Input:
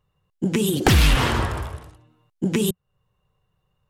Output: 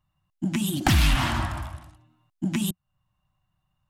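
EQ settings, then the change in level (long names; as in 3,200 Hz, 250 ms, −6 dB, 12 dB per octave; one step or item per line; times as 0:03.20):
Chebyshev band-stop filter 310–650 Hz, order 2
−3.0 dB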